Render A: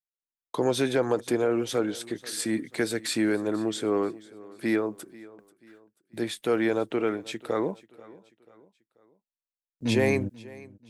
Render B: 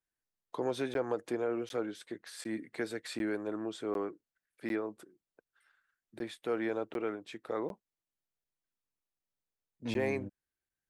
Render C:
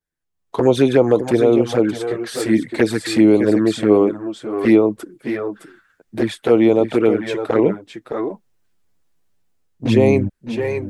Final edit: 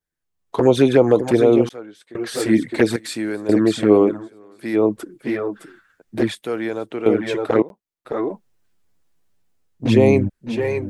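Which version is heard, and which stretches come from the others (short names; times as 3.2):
C
1.69–2.15 from B
2.96–3.49 from A
4.24–4.78 from A, crossfade 0.10 s
6.35–7.06 from A
7.62–8.05 from B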